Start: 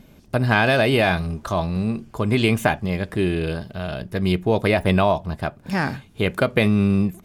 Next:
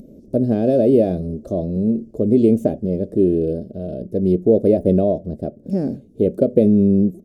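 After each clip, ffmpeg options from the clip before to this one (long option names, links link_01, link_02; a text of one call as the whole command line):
ffmpeg -i in.wav -af "firequalizer=gain_entry='entry(130,0);entry(230,11);entry(560,10);entry(920,-24);entry(2000,-25);entry(5600,-10)':delay=0.05:min_phase=1,acompressor=mode=upward:threshold=-33dB:ratio=2.5,volume=-3.5dB" out.wav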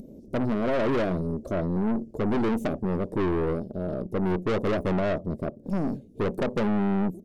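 ffmpeg -i in.wav -af "aeval=exprs='(tanh(14.1*val(0)+0.55)-tanh(0.55))/14.1':channel_layout=same" out.wav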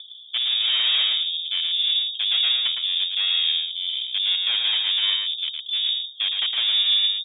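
ffmpeg -i in.wav -af "aecho=1:1:111:0.596,lowpass=frequency=3100:width_type=q:width=0.5098,lowpass=frequency=3100:width_type=q:width=0.6013,lowpass=frequency=3100:width_type=q:width=0.9,lowpass=frequency=3100:width_type=q:width=2.563,afreqshift=-3700,volume=1.5dB" out.wav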